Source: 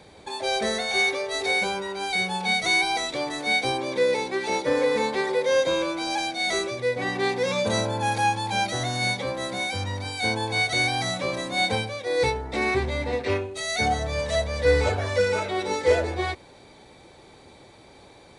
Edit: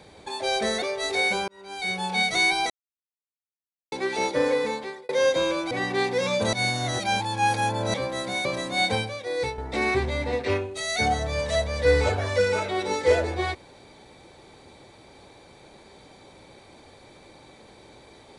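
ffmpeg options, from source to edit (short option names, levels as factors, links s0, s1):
-filter_complex "[0:a]asplit=11[s0][s1][s2][s3][s4][s5][s6][s7][s8][s9][s10];[s0]atrim=end=0.822[s11];[s1]atrim=start=1.128:end=1.79,asetpts=PTS-STARTPTS,afade=t=out:st=0.658:d=0.004:c=hsin[s12];[s2]atrim=start=1.79:end=3.01,asetpts=PTS-STARTPTS,afade=t=in:d=0.6,afade=t=out:st=1.216:d=0.004:c=hsin[s13];[s3]atrim=start=3.01:end=4.23,asetpts=PTS-STARTPTS,volume=0[s14];[s4]atrim=start=4.23:end=5.4,asetpts=PTS-STARTPTS,afade=t=in:d=0.004:c=hsin,afade=t=out:st=0.54:d=0.63[s15];[s5]atrim=start=5.4:end=6.022,asetpts=PTS-STARTPTS,afade=t=in:d=0.004:c=hsin[s16];[s6]atrim=start=6.958:end=7.782[s17];[s7]atrim=start=7.778:end=9.192,asetpts=PTS-STARTPTS,areverse[s18];[s8]atrim=start=9.188:end=9.702[s19];[s9]atrim=start=11.248:end=12.38,asetpts=PTS-STARTPTS,afade=t=out:st=0.572:d=0.56:silence=0.375837[s20];[s10]atrim=start=12.38,asetpts=PTS-STARTPTS,afade=t=in:d=0.004:c=hsin:silence=0.375837[s21];[s12][s13][s14][s15][s16]concat=n=5:v=0:a=1[s22];[s11][s22]acrossfade=d=0.004:c1=hsin:c2=hsin[s23];[s23][s17]acrossfade=d=0.004:c1=hsin:c2=hsin[s24];[s24][s18]acrossfade=d=0.004:c1=hsin:c2=hsin[s25];[s25][s19]acrossfade=d=0.004:c1=hsin:c2=hsin[s26];[s20][s21]concat=n=2:v=0:a=1[s27];[s26][s27]acrossfade=d=0.004:c1=hsin:c2=hsin"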